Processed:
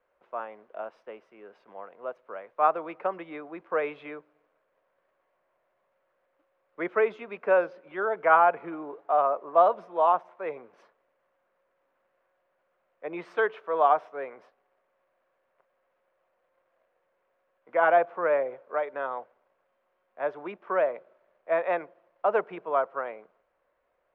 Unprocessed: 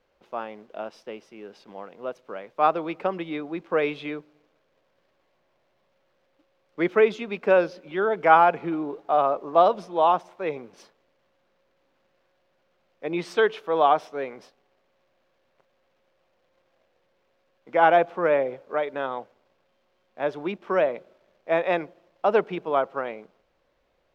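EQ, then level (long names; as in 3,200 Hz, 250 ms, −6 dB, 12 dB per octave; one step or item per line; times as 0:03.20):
three-way crossover with the lows and the highs turned down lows −14 dB, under 490 Hz, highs −22 dB, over 2,100 Hz
notch filter 820 Hz, Q 12
0.0 dB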